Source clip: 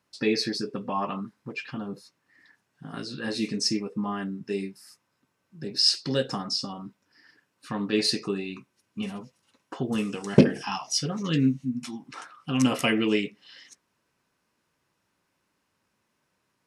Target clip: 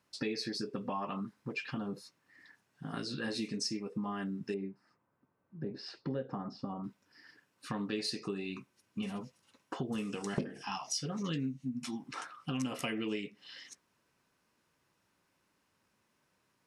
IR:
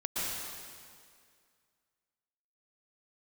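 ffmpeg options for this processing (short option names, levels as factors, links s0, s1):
-filter_complex "[0:a]asettb=1/sr,asplit=3[s0][s1][s2];[s0]atrim=end=4.544[s3];[s1]atrim=start=4.54:end=6.84,asetpts=PTS-STARTPTS,afade=t=in:d=0.004:c=qsin,afade=t=out:st=2.296:d=0.004:c=qsin,lowpass=1200[s4];[s2]atrim=start=6.836[s5];[s3][s4]acrossfade=d=0.004:c1=hsin:c2=qsin[s6];[s6][s5]acrossfade=d=0.004:c1=qsin:c2=hsin,acompressor=threshold=0.0224:ratio=5,volume=0.891"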